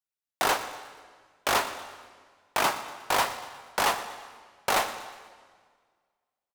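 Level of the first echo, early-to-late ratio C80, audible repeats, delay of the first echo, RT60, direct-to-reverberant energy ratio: -16.5 dB, 11.0 dB, 3, 120 ms, 1.7 s, 9.5 dB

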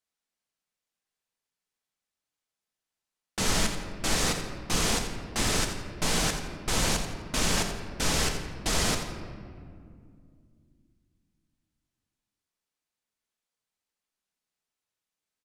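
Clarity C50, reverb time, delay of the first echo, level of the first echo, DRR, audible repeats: 5.5 dB, 2.3 s, 85 ms, -10.5 dB, 4.0 dB, 1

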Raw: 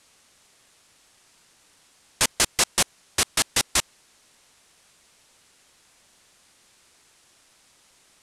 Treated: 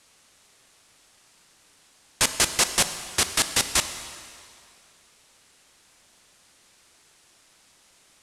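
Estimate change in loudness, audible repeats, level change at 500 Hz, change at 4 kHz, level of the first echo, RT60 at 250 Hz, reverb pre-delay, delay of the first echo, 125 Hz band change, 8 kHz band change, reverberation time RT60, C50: 0.0 dB, no echo, +0.5 dB, +0.5 dB, no echo, 2.2 s, 12 ms, no echo, +0.5 dB, +0.5 dB, 2.3 s, 10.0 dB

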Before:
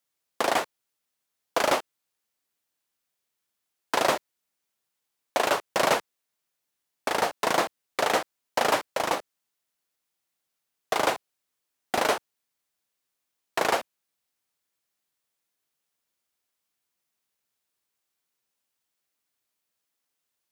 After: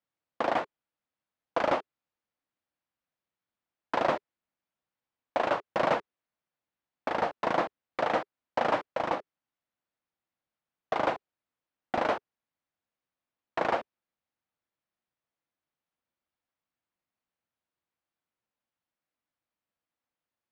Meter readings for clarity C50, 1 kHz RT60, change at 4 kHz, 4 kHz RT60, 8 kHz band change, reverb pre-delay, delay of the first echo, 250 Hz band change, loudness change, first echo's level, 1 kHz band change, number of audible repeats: no reverb, no reverb, -11.5 dB, no reverb, under -20 dB, no reverb, no echo, -1.5 dB, -4.0 dB, no echo, -3.0 dB, no echo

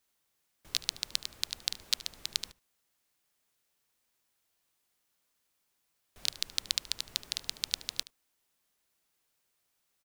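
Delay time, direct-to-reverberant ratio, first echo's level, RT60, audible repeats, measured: 74 ms, no reverb, -19.5 dB, no reverb, 1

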